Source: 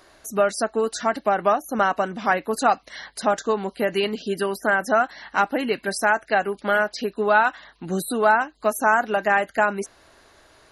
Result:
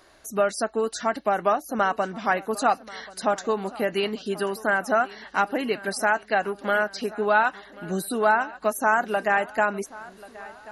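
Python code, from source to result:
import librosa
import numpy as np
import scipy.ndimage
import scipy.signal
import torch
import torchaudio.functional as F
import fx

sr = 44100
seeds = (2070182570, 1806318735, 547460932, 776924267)

y = fx.echo_feedback(x, sr, ms=1085, feedback_pct=53, wet_db=-20.0)
y = y * 10.0 ** (-2.5 / 20.0)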